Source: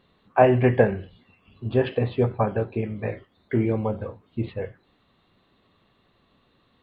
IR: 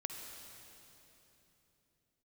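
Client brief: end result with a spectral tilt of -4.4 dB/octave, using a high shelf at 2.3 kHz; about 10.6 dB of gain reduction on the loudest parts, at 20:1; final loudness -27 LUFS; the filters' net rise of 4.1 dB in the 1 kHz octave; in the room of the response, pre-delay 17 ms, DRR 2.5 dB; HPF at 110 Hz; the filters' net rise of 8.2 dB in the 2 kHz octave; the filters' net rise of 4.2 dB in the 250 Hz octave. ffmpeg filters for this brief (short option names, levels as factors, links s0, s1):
-filter_complex "[0:a]highpass=110,equalizer=f=250:t=o:g=5,equalizer=f=1000:t=o:g=3.5,equalizer=f=2000:t=o:g=7,highshelf=f=2300:g=4.5,acompressor=threshold=0.126:ratio=20,asplit=2[s0][s1];[1:a]atrim=start_sample=2205,adelay=17[s2];[s1][s2]afir=irnorm=-1:irlink=0,volume=0.794[s3];[s0][s3]amix=inputs=2:normalize=0,volume=0.841"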